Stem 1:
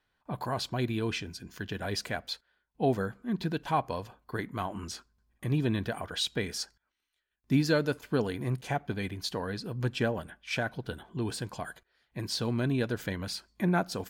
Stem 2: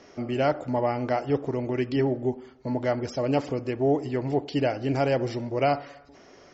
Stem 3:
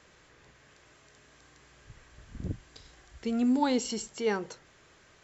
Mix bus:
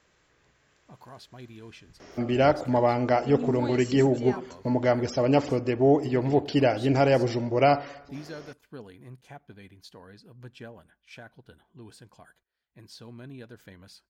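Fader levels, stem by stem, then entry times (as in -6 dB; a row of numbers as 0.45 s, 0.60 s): -14.5 dB, +3.0 dB, -6.5 dB; 0.60 s, 2.00 s, 0.00 s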